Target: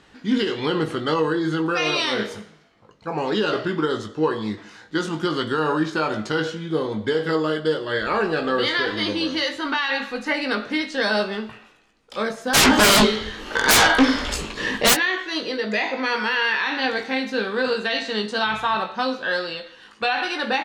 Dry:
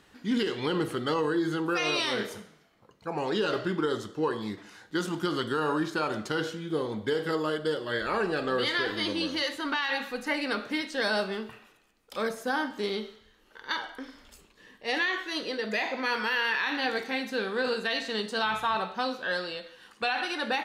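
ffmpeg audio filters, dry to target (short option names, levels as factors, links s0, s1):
-filter_complex "[0:a]lowpass=7000,asplit=3[s0][s1][s2];[s0]afade=t=out:st=12.53:d=0.02[s3];[s1]aeval=exprs='0.141*sin(PI/2*8.91*val(0)/0.141)':c=same,afade=t=in:st=12.53:d=0.02,afade=t=out:st=14.93:d=0.02[s4];[s2]afade=t=in:st=14.93:d=0.02[s5];[s3][s4][s5]amix=inputs=3:normalize=0,asplit=2[s6][s7];[s7]adelay=19,volume=0.422[s8];[s6][s8]amix=inputs=2:normalize=0,volume=1.88"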